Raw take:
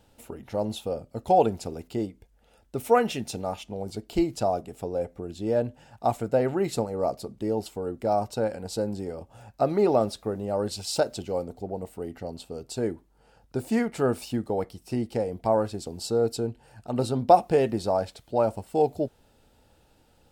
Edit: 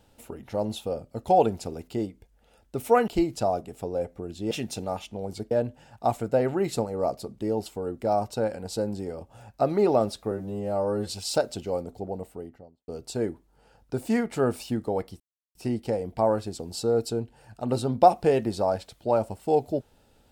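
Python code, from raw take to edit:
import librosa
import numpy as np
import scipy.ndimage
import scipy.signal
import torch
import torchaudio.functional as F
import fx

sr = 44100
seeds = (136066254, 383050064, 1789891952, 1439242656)

y = fx.studio_fade_out(x, sr, start_s=11.72, length_s=0.78)
y = fx.edit(y, sr, fx.move(start_s=3.08, length_s=1.0, to_s=5.51),
    fx.stretch_span(start_s=10.31, length_s=0.38, factor=2.0),
    fx.insert_silence(at_s=14.82, length_s=0.35), tone=tone)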